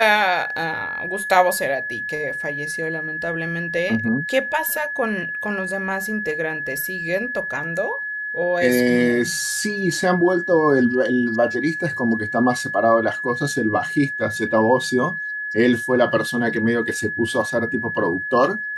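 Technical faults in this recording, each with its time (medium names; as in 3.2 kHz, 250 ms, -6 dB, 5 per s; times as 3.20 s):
whine 1.7 kHz -25 dBFS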